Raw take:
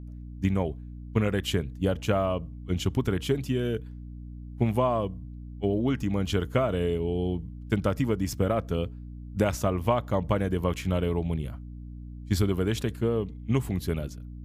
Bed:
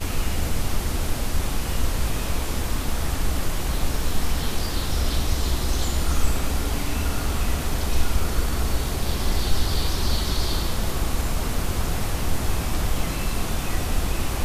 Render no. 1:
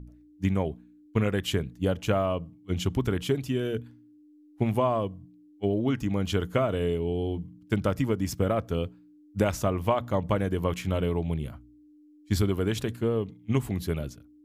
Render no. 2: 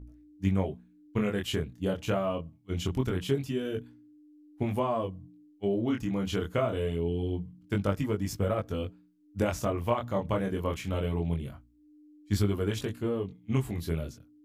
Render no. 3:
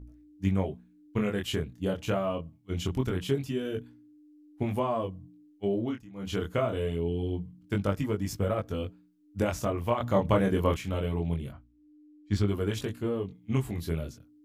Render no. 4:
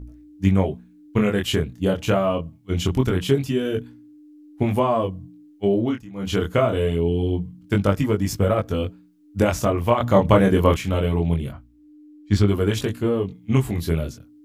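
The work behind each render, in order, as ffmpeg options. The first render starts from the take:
-af "bandreject=f=60:t=h:w=4,bandreject=f=120:t=h:w=4,bandreject=f=180:t=h:w=4,bandreject=f=240:t=h:w=4"
-af "flanger=delay=19.5:depth=6.5:speed=0.24"
-filter_complex "[0:a]asettb=1/sr,asplit=3[a][b][c];[a]atrim=end=10.004[d];[b]atrim=start=10:end=10.77,asetpts=PTS-STARTPTS,afade=t=in:d=0.004:c=qsin,afade=t=out:st=0.766:d=0.004:c=qsin,acontrast=34[e];[c]atrim=start=10.766[f];[d][e]acrossfade=d=0.004:c1=hsin:c2=qsin[g];[g][f]acrossfade=d=0.004:c1=qsin:c2=hsin,asettb=1/sr,asplit=3[h][i][j];[h]atrim=end=11.524[k];[i]atrim=start=11.52:end=12.48,asetpts=PTS-STARTPTS,afade=t=in:d=0.004:c=qsin,afade=t=out:st=0.956:d=0.004:c=qsin,adynamicsmooth=sensitivity=5.5:basefreq=4.9k[l];[j]atrim=start=12.476[m];[k][l]acrossfade=d=0.004:c1=hsin:c2=qsin[n];[n][m]acrossfade=d=0.004:c1=qsin:c2=hsin,asplit=3[o][p][q];[o]atrim=end=6.02,asetpts=PTS-STARTPTS,afade=t=out:st=5.73:d=0.29:c=qsin:silence=0.141254[r];[p]atrim=start=6.02:end=6.14,asetpts=PTS-STARTPTS,volume=-17dB[s];[q]atrim=start=6.14,asetpts=PTS-STARTPTS,afade=t=in:d=0.29:c=qsin:silence=0.141254[t];[r][s][t]concat=n=3:v=0:a=1"
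-af "volume=9dB"

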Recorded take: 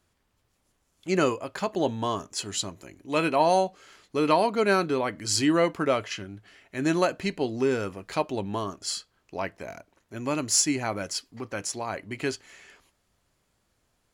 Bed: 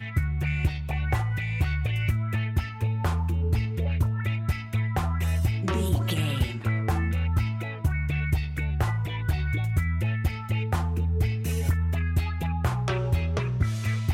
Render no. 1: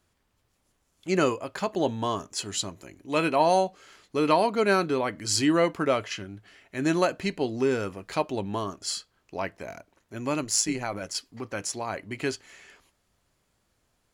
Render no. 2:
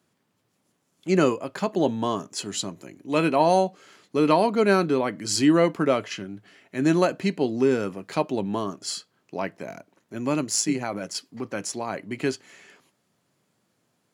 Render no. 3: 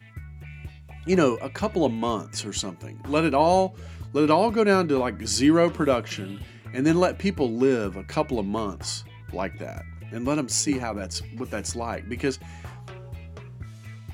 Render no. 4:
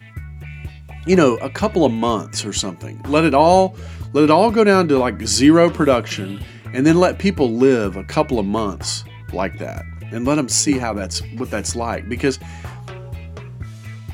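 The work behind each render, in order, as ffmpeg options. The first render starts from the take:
-filter_complex "[0:a]asettb=1/sr,asplit=3[a][b][c];[a]atrim=end=10.424[d];[b]atrim=start=10.42:end=11.15,asetpts=PTS-STARTPTS,afade=t=in:d=0.004:c=qsin,afade=t=out:st=0.726:d=0.004:c=qsin,tremolo=f=110:d=0.571[e];[c]atrim=start=11.146[f];[d][e]acrossfade=d=0.004:c1=hsin:c2=qsin[g];[g][f]acrossfade=d=0.004:c1=qsin:c2=hsin"
-af "highpass=f=140:w=0.5412,highpass=f=140:w=1.3066,lowshelf=f=360:g=8"
-filter_complex "[1:a]volume=-14dB[a];[0:a][a]amix=inputs=2:normalize=0"
-af "volume=7.5dB,alimiter=limit=-1dB:level=0:latency=1"

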